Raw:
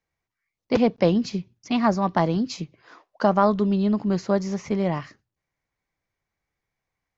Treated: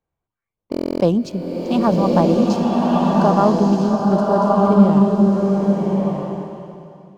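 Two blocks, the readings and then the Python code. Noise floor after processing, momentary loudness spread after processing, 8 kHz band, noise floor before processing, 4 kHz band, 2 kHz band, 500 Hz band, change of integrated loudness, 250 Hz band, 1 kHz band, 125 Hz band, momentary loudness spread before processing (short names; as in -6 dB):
-85 dBFS, 12 LU, n/a, -85 dBFS, +2.0 dB, 0.0 dB, +7.0 dB, +6.5 dB, +9.0 dB, +7.0 dB, +9.0 dB, 11 LU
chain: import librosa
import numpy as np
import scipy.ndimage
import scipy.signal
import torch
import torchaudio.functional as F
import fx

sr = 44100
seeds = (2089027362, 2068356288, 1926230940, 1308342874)

y = fx.wiener(x, sr, points=9)
y = fx.peak_eq(y, sr, hz=2000.0, db=-14.5, octaves=0.59)
y = fx.notch(y, sr, hz=1300.0, q=29.0)
y = fx.dynamic_eq(y, sr, hz=4300.0, q=3.2, threshold_db=-52.0, ratio=4.0, max_db=-4)
y = fx.buffer_glitch(y, sr, at_s=(0.7,), block=1024, repeats=12)
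y = fx.rev_bloom(y, sr, seeds[0], attack_ms=1280, drr_db=-3.0)
y = F.gain(torch.from_numpy(y), 3.5).numpy()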